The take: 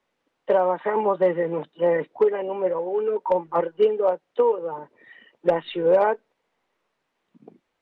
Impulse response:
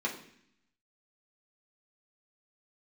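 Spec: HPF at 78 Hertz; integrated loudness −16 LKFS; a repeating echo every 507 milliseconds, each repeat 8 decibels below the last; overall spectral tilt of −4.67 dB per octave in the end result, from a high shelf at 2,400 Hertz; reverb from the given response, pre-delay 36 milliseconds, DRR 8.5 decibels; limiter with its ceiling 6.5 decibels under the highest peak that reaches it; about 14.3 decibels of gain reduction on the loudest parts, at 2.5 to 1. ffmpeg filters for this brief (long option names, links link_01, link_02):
-filter_complex "[0:a]highpass=78,highshelf=frequency=2400:gain=-4.5,acompressor=threshold=-37dB:ratio=2.5,alimiter=level_in=3.5dB:limit=-24dB:level=0:latency=1,volume=-3.5dB,aecho=1:1:507|1014|1521|2028|2535:0.398|0.159|0.0637|0.0255|0.0102,asplit=2[link_01][link_02];[1:a]atrim=start_sample=2205,adelay=36[link_03];[link_02][link_03]afir=irnorm=-1:irlink=0,volume=-14.5dB[link_04];[link_01][link_04]amix=inputs=2:normalize=0,volume=20.5dB"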